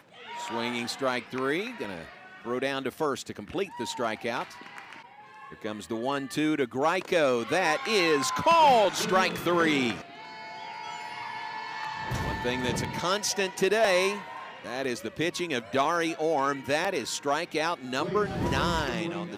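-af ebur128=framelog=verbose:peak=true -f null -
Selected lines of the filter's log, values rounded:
Integrated loudness:
  I:         -27.7 LUFS
  Threshold: -38.3 LUFS
Loudness range:
  LRA:         9.1 LU
  Threshold: -48.1 LUFS
  LRA low:   -33.1 LUFS
  LRA high:  -24.0 LUFS
True peak:
  Peak:      -11.7 dBFS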